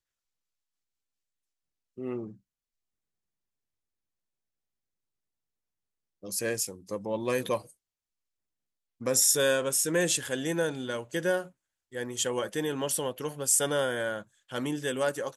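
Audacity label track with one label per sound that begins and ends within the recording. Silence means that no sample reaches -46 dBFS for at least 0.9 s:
1.980000	2.340000	sound
6.230000	7.710000	sound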